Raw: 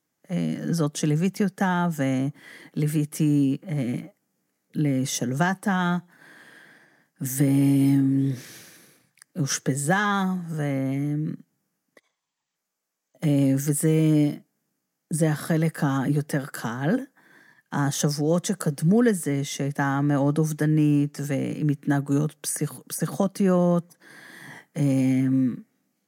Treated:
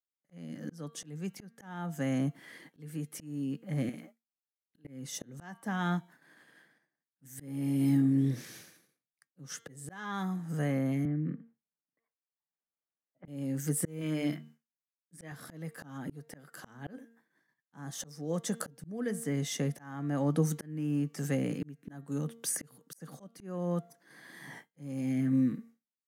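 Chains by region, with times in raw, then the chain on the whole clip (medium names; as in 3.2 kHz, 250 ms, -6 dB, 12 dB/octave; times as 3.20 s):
3.89–4.85 s: high-pass 490 Hz 6 dB/octave + compression 4:1, threshold -37 dBFS
11.05–13.28 s: low-pass 2.4 kHz 24 dB/octave + three bands compressed up and down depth 70%
14.01–15.32 s: peaking EQ 2 kHz +10 dB 2.3 oct + hum notches 50/100/150/200/250/300/350 Hz
whole clip: de-hum 230 Hz, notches 18; expander -43 dBFS; slow attack 649 ms; trim -4.5 dB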